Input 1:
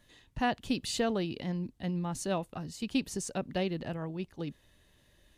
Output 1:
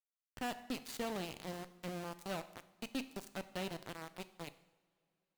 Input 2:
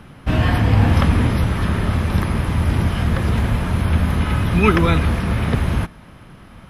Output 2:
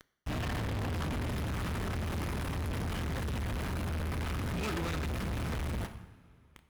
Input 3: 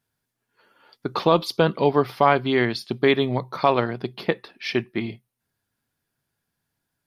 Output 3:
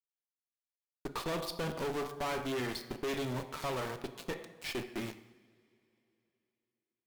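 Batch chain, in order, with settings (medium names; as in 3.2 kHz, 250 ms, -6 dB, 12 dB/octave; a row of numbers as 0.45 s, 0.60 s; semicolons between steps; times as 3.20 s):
small samples zeroed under -31 dBFS; two-slope reverb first 0.77 s, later 3.3 s, from -20 dB, DRR 11.5 dB; valve stage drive 27 dB, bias 0.55; trim -5.5 dB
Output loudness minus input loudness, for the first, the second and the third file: -9.5 LU, -17.0 LU, -15.5 LU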